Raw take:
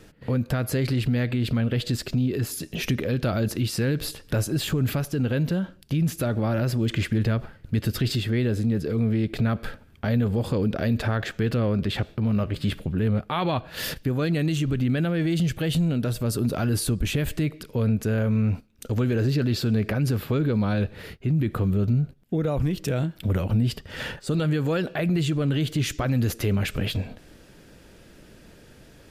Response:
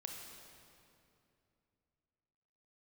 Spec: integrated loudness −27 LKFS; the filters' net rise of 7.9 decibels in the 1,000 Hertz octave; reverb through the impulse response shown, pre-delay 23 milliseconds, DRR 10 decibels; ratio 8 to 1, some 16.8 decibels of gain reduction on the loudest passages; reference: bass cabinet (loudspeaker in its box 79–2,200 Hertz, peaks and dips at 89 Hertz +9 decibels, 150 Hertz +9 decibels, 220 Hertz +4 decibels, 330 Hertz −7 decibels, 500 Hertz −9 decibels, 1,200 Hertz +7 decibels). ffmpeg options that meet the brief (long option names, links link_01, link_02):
-filter_complex "[0:a]equalizer=frequency=1000:width_type=o:gain=6.5,acompressor=threshold=-37dB:ratio=8,asplit=2[link_01][link_02];[1:a]atrim=start_sample=2205,adelay=23[link_03];[link_02][link_03]afir=irnorm=-1:irlink=0,volume=-7.5dB[link_04];[link_01][link_04]amix=inputs=2:normalize=0,highpass=frequency=79:width=0.5412,highpass=frequency=79:width=1.3066,equalizer=frequency=89:width_type=q:width=4:gain=9,equalizer=frequency=150:width_type=q:width=4:gain=9,equalizer=frequency=220:width_type=q:width=4:gain=4,equalizer=frequency=330:width_type=q:width=4:gain=-7,equalizer=frequency=500:width_type=q:width=4:gain=-9,equalizer=frequency=1200:width_type=q:width=4:gain=7,lowpass=frequency=2200:width=0.5412,lowpass=frequency=2200:width=1.3066,volume=9.5dB"